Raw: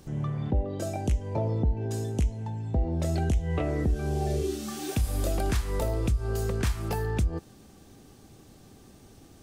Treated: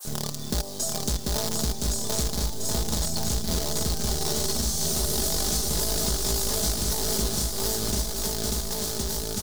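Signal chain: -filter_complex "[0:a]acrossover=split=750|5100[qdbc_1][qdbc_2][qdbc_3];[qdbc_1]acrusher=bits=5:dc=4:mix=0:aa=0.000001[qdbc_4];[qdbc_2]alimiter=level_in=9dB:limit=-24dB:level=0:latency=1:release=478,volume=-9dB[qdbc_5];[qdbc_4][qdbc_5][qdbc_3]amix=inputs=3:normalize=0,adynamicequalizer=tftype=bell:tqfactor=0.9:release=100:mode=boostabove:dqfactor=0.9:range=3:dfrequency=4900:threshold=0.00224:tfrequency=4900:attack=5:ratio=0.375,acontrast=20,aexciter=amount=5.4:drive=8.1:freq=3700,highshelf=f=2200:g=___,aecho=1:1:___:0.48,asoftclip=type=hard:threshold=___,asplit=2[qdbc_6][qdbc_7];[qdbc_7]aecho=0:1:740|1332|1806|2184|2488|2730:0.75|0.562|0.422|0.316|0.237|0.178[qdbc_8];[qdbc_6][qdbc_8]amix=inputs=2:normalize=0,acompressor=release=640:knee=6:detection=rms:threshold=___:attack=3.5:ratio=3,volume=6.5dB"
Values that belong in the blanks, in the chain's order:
-6, 4.8, -10dB, -33dB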